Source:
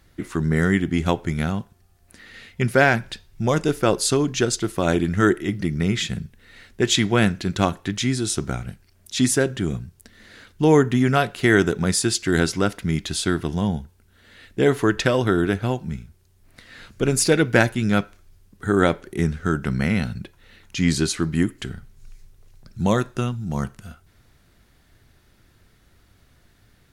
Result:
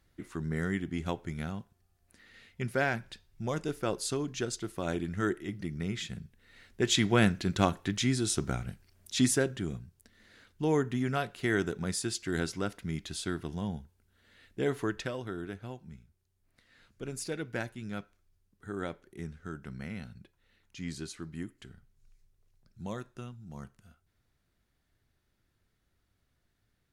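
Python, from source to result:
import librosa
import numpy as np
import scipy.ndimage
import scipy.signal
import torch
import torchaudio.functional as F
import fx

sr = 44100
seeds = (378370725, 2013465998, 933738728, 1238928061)

y = fx.gain(x, sr, db=fx.line((6.23, -13.0), (7.12, -6.0), (9.19, -6.0), (9.83, -12.5), (14.83, -12.5), (15.23, -19.0)))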